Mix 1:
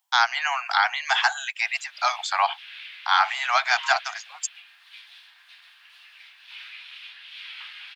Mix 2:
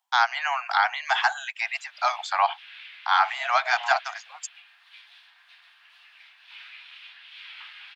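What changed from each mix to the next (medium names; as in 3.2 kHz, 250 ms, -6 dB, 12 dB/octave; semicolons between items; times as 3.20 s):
second voice: remove brick-wall FIR high-pass 880 Hz; master: add tilt EQ -2.5 dB/octave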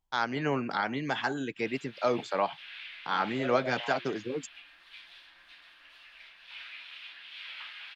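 first voice -9.5 dB; second voice -9.5 dB; master: remove steep high-pass 690 Hz 96 dB/octave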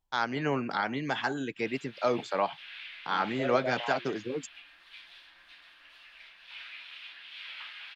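second voice +4.5 dB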